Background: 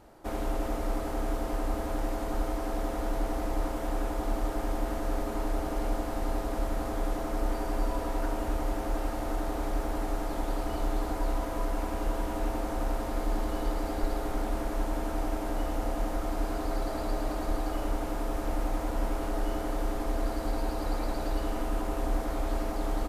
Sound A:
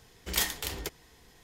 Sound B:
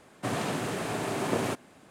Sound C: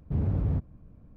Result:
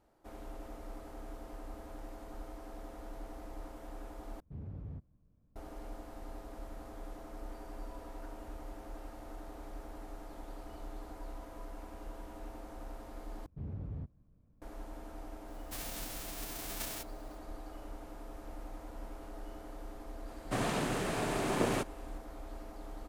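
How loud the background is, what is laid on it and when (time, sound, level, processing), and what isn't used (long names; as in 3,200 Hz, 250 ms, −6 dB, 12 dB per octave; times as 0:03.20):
background −15.5 dB
0:04.40: overwrite with C −17.5 dB
0:13.46: overwrite with C −14.5 dB
0:15.48: mix in B −13 dB + spectral envelope flattened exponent 0.1
0:20.28: mix in B −2.5 dB
not used: A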